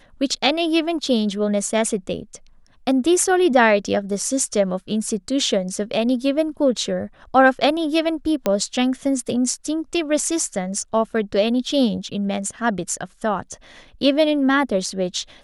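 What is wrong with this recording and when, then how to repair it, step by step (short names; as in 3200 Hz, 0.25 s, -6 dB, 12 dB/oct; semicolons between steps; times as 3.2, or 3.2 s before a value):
8.46 pop -6 dBFS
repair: de-click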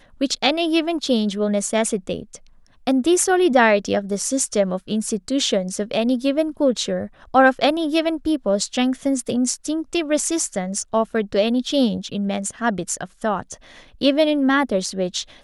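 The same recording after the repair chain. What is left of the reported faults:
none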